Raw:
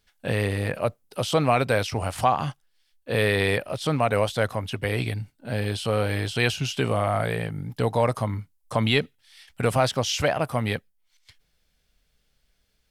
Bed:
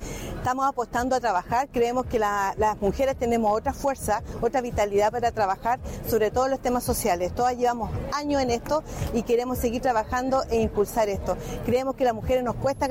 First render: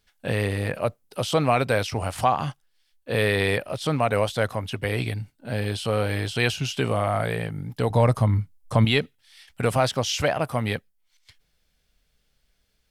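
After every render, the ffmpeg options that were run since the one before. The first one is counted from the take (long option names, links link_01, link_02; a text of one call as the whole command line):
ffmpeg -i in.wav -filter_complex "[0:a]asettb=1/sr,asplit=3[link_01][link_02][link_03];[link_01]atrim=end=7.904[link_04];[link_02]atrim=start=7.9:end=8.85,asetpts=PTS-STARTPTS,afade=type=in:duration=0.004:curve=qsin,afade=type=out:start_time=0.946:duration=0.004:curve=qsin,lowshelf=frequency=170:gain=12[link_05];[link_03]atrim=start=8.846[link_06];[link_04][link_05]acrossfade=duration=0.004:curve1=hsin:curve2=qsin[link_07];[link_07][link_06]acrossfade=duration=0.004:curve1=qsin:curve2=hsin" out.wav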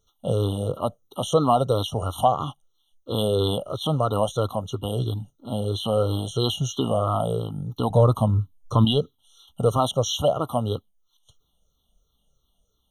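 ffmpeg -i in.wav -af "afftfilt=real='re*pow(10,10/40*sin(2*PI*(0.54*log(max(b,1)*sr/1024/100)/log(2)-(-3)*(pts-256)/sr)))':imag='im*pow(10,10/40*sin(2*PI*(0.54*log(max(b,1)*sr/1024/100)/log(2)-(-3)*(pts-256)/sr)))':win_size=1024:overlap=0.75,afftfilt=real='re*eq(mod(floor(b*sr/1024/1400),2),0)':imag='im*eq(mod(floor(b*sr/1024/1400),2),0)':win_size=1024:overlap=0.75" out.wav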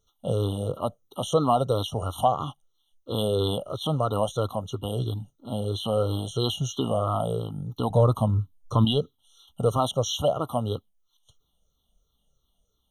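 ffmpeg -i in.wav -af "volume=-2.5dB" out.wav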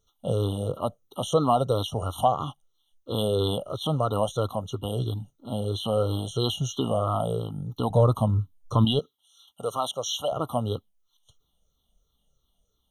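ffmpeg -i in.wav -filter_complex "[0:a]asettb=1/sr,asplit=3[link_01][link_02][link_03];[link_01]atrim=end=8.994[link_04];[link_02]atrim=start=8.99:end=10.32,asetpts=PTS-STARTPTS,afade=type=in:duration=0.004:curve=qsin,afade=type=out:start_time=1.326:duration=0.004:curve=qsin,highpass=frequency=850:poles=1[link_05];[link_03]atrim=start=10.316[link_06];[link_04][link_05]acrossfade=duration=0.004:curve1=hsin:curve2=qsin[link_07];[link_07][link_06]acrossfade=duration=0.004:curve1=qsin:curve2=hsin" out.wav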